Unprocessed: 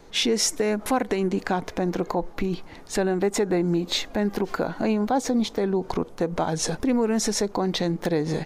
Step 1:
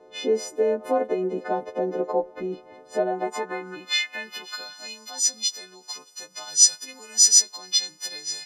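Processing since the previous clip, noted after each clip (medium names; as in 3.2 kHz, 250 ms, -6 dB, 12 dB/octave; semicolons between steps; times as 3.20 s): partials quantised in pitch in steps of 3 st; band-pass sweep 510 Hz -> 5.5 kHz, 2.87–4.84 s; trim +5.5 dB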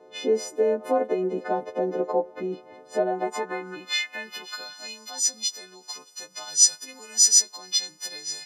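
high-pass 73 Hz; dynamic bell 3.5 kHz, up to -3 dB, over -35 dBFS, Q 0.78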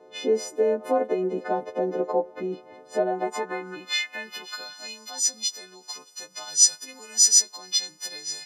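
no audible change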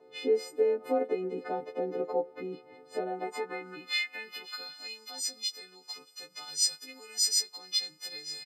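comb 7.2 ms, depth 83%; trim -7.5 dB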